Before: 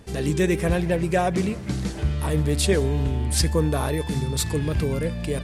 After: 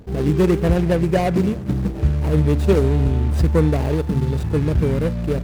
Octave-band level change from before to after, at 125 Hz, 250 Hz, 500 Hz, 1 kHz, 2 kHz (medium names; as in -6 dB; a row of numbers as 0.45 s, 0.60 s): +6.0 dB, +5.5 dB, +4.5 dB, +1.5 dB, -1.5 dB